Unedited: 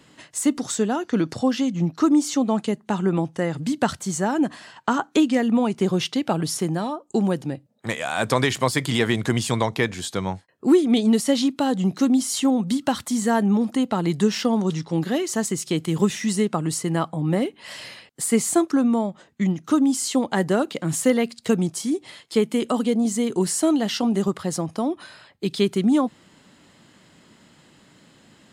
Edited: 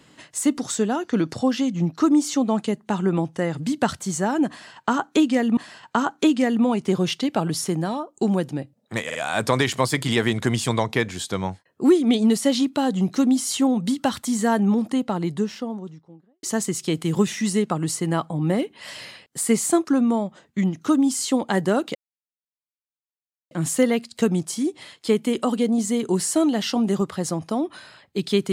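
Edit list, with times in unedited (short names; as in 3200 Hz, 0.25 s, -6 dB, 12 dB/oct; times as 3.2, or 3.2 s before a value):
4.5–5.57 loop, 2 plays
7.98 stutter 0.05 s, 3 plays
13.47–15.26 studio fade out
20.78 insert silence 1.56 s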